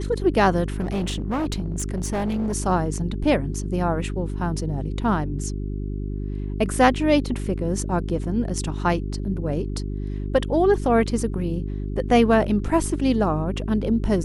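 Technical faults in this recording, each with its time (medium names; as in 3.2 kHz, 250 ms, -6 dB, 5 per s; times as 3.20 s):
hum 50 Hz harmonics 8 -28 dBFS
0.80–2.54 s: clipped -21 dBFS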